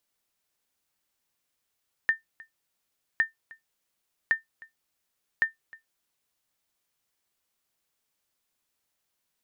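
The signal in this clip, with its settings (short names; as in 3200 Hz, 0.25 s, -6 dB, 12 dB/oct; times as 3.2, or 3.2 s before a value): sonar ping 1800 Hz, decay 0.14 s, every 1.11 s, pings 4, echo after 0.31 s, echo -23.5 dB -14 dBFS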